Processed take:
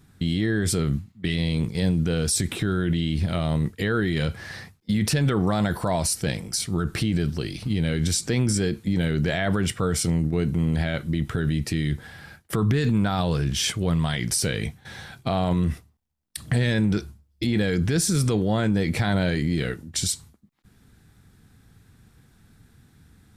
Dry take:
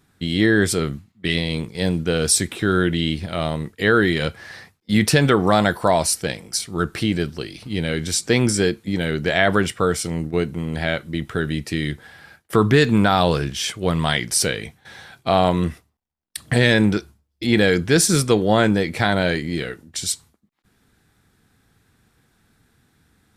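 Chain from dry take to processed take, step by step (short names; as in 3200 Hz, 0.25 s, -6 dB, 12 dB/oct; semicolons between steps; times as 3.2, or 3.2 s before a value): tone controls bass +9 dB, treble +2 dB; limiter -14.5 dBFS, peak gain reduction 14 dB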